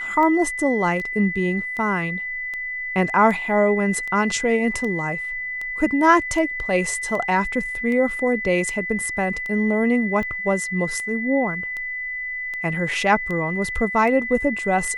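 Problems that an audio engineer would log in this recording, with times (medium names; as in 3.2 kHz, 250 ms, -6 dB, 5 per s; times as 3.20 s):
tick 78 rpm -19 dBFS
whine 2 kHz -26 dBFS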